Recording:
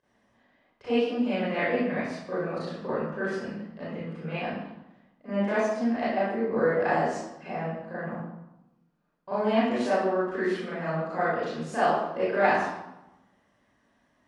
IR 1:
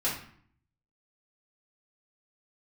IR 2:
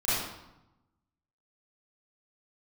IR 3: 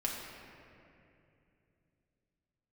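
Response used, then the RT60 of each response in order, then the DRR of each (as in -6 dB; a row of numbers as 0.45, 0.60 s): 2; 0.55, 0.90, 2.7 s; -8.5, -12.5, -3.0 dB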